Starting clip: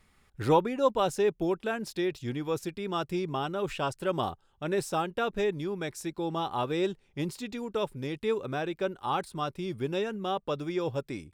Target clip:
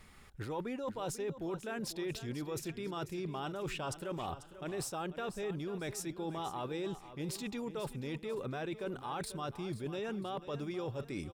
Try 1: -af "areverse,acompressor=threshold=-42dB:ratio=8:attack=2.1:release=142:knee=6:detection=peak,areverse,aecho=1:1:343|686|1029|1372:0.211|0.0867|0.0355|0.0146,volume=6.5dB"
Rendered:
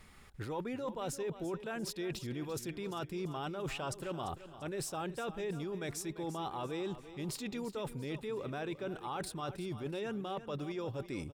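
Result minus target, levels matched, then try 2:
echo 0.149 s early
-af "areverse,acompressor=threshold=-42dB:ratio=8:attack=2.1:release=142:knee=6:detection=peak,areverse,aecho=1:1:492|984|1476|1968:0.211|0.0867|0.0355|0.0146,volume=6.5dB"

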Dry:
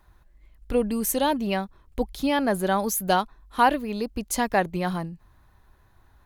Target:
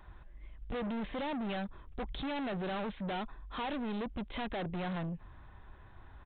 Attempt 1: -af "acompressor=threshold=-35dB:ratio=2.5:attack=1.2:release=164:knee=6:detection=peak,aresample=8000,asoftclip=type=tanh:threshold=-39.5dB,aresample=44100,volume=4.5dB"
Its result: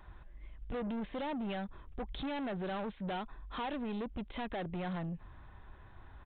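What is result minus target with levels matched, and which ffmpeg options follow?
compressor: peak gain reduction +7 dB
-af "acompressor=threshold=-23.5dB:ratio=2.5:attack=1.2:release=164:knee=6:detection=peak,aresample=8000,asoftclip=type=tanh:threshold=-39.5dB,aresample=44100,volume=4.5dB"

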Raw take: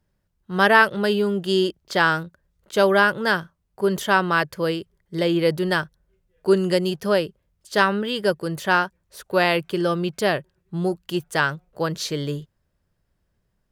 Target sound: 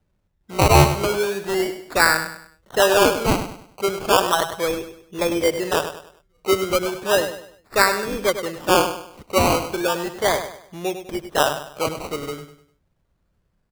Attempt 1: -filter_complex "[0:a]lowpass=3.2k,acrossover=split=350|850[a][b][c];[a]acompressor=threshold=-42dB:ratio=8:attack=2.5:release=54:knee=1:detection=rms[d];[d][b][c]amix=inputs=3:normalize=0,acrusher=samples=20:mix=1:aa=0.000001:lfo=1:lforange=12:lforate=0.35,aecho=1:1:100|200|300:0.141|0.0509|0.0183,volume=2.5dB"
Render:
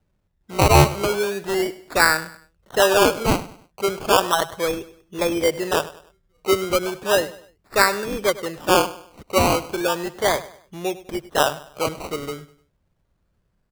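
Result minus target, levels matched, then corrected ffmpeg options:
echo-to-direct -6.5 dB
-filter_complex "[0:a]lowpass=3.2k,acrossover=split=350|850[a][b][c];[a]acompressor=threshold=-42dB:ratio=8:attack=2.5:release=54:knee=1:detection=rms[d];[d][b][c]amix=inputs=3:normalize=0,acrusher=samples=20:mix=1:aa=0.000001:lfo=1:lforange=12:lforate=0.35,aecho=1:1:100|200|300|400:0.316|0.114|0.041|0.0148,volume=2.5dB"

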